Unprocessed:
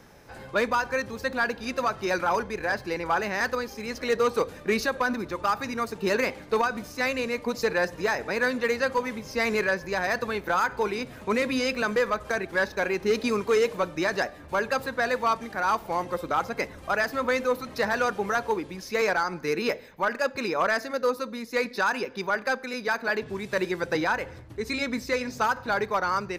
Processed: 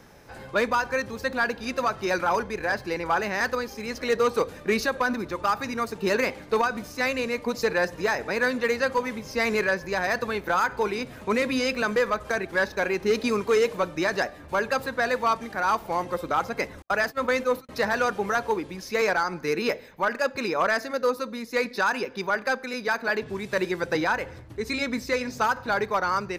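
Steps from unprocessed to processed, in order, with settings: 16.82–17.69 s: gate -29 dBFS, range -54 dB; trim +1 dB

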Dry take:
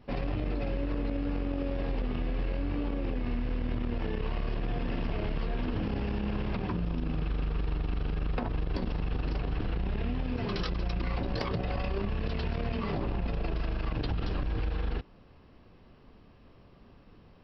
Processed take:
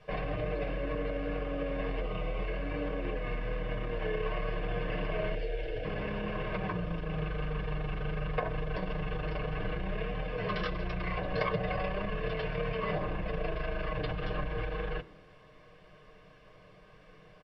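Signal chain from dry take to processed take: 2.01–2.48 s: band-stop 1.7 kHz, Q 5.5; comb 6.5 ms, depth 76%; 5.35–5.85 s: static phaser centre 460 Hz, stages 4; word length cut 10-bit, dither triangular; low-pass 3.6 kHz 12 dB/octave; reverberation RT60 0.80 s, pre-delay 3 ms, DRR 16.5 dB; trim -6.5 dB

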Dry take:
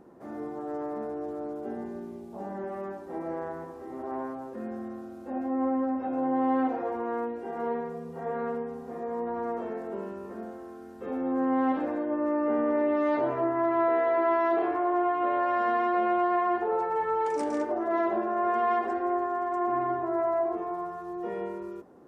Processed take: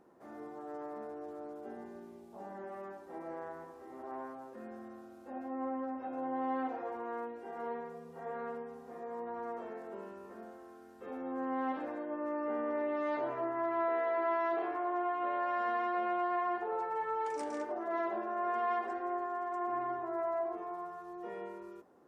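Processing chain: bass shelf 450 Hz -9 dB; trim -5 dB

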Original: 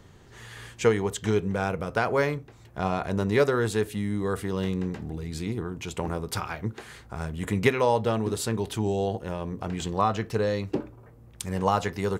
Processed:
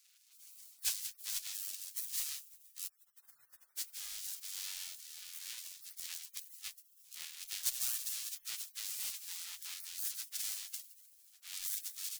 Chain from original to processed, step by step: square wave that keeps the level; 2.87–3.78 s: inverse Chebyshev band-stop 100–1400 Hz, stop band 40 dB; 8.99–9.74 s: comb 6.2 ms, depth 68%; thinning echo 167 ms, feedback 66%, high-pass 550 Hz, level -12 dB; spectral gate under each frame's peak -30 dB weak; amplifier tone stack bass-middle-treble 10-0-10; trim -3 dB

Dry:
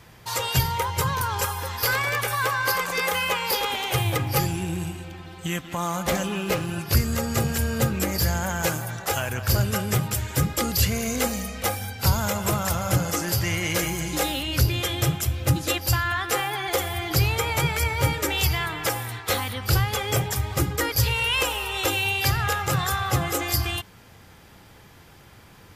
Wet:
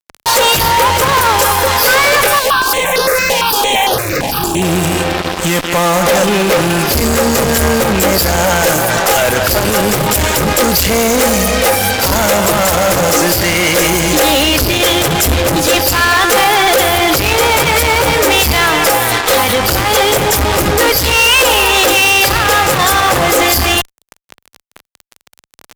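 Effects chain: peaking EQ 550 Hz +7 dB 0.81 oct; fuzz box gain 33 dB, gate -39 dBFS; peaking EQ 110 Hz -13 dB 0.9 oct; loudness maximiser +18 dB; 2.39–4.62 s: stepped phaser 8.8 Hz 350–7700 Hz; trim -4 dB

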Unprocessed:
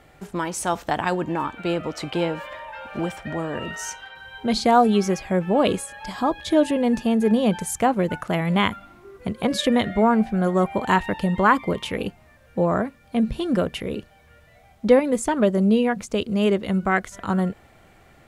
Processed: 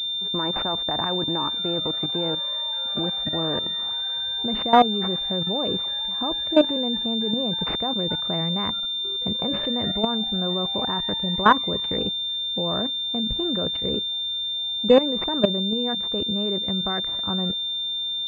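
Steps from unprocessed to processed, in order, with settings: level held to a coarse grid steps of 15 dB; class-D stage that switches slowly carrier 3.6 kHz; trim +3.5 dB

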